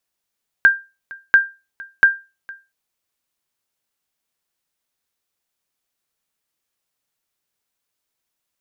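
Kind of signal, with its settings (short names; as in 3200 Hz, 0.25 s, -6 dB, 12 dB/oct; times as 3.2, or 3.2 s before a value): sonar ping 1590 Hz, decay 0.27 s, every 0.69 s, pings 3, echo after 0.46 s, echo -23.5 dB -3 dBFS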